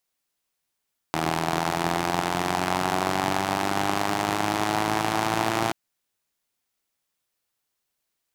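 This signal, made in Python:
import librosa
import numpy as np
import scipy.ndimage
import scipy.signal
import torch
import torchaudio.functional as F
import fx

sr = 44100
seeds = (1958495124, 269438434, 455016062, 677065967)

y = fx.engine_four_rev(sr, seeds[0], length_s=4.58, rpm=2400, resonances_hz=(170.0, 320.0, 730.0), end_rpm=3400)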